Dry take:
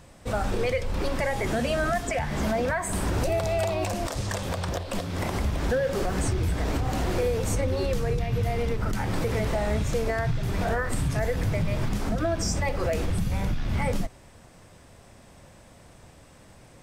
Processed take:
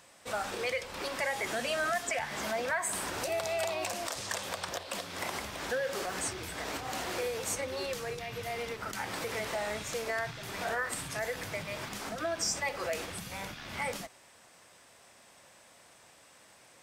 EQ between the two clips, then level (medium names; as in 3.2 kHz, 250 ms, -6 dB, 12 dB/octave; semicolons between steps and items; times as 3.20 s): high-pass 1.2 kHz 6 dB/octave; 0.0 dB